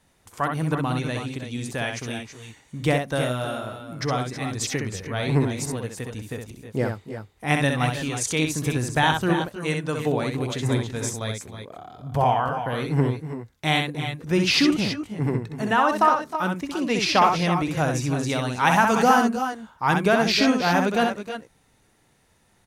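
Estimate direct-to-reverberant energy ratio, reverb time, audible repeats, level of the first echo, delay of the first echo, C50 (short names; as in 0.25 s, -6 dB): none, none, 2, -5.0 dB, 64 ms, none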